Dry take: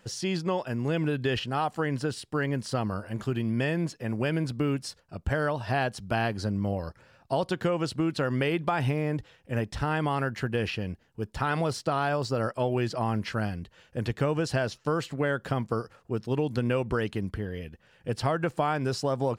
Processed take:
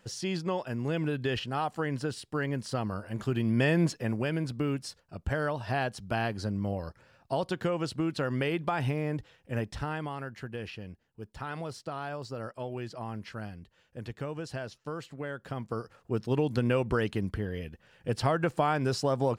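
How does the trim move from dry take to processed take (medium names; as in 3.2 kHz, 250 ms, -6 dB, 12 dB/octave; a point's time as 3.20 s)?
3.01 s -3 dB
3.91 s +4.5 dB
4.24 s -3 dB
9.68 s -3 dB
10.16 s -10 dB
15.39 s -10 dB
16.15 s 0 dB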